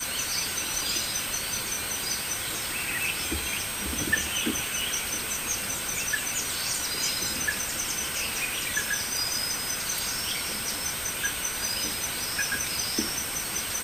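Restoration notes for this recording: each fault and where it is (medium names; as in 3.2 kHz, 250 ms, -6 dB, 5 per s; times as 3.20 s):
crackle 76 per s -34 dBFS
whine 8.4 kHz -35 dBFS
4.81 s: pop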